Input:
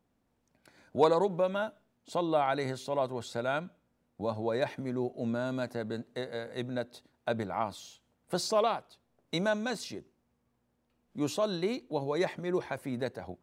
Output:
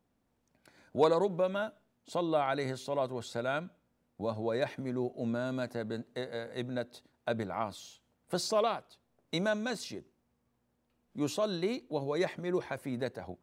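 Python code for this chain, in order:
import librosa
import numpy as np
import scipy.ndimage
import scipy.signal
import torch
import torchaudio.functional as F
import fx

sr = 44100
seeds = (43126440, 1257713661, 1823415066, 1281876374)

y = fx.dynamic_eq(x, sr, hz=860.0, q=4.0, threshold_db=-44.0, ratio=4.0, max_db=-4)
y = F.gain(torch.from_numpy(y), -1.0).numpy()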